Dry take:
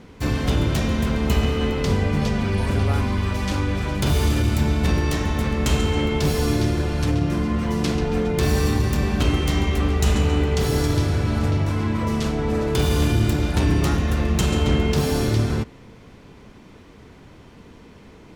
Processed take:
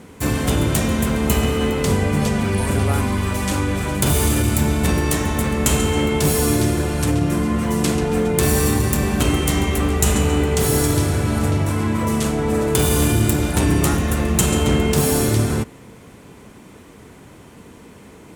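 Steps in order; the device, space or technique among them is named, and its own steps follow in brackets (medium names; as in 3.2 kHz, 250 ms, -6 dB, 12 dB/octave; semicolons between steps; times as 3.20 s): budget condenser microphone (high-pass 93 Hz 6 dB/octave; resonant high shelf 6.6 kHz +9 dB, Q 1.5); trim +4 dB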